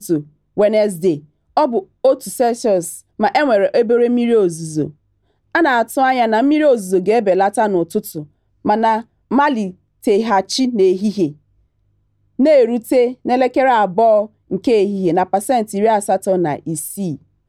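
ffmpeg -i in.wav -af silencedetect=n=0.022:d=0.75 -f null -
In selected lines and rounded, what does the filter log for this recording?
silence_start: 11.32
silence_end: 12.39 | silence_duration: 1.07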